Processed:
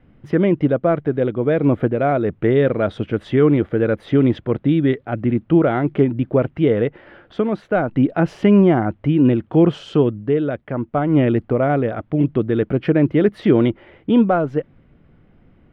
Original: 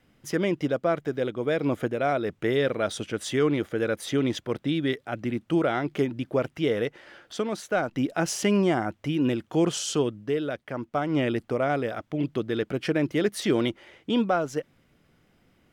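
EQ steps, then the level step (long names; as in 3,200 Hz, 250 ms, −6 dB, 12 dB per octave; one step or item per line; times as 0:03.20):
high-frequency loss of the air 490 metres
spectral tilt −2 dB per octave
high-shelf EQ 3,200 Hz +7.5 dB
+7.0 dB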